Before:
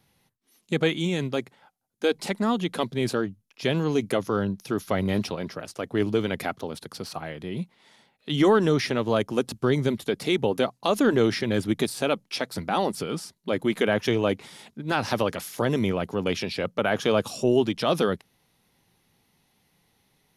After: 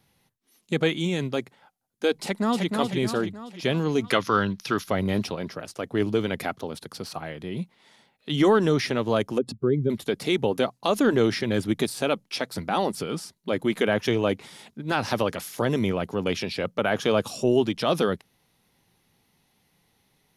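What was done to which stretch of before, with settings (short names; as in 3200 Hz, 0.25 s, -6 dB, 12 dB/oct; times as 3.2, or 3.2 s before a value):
2.16–2.72 echo throw 0.31 s, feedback 50%, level -4 dB
4.04–4.84 band shelf 2400 Hz +9.5 dB 2.8 oct
9.38–9.9 spectral contrast raised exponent 1.8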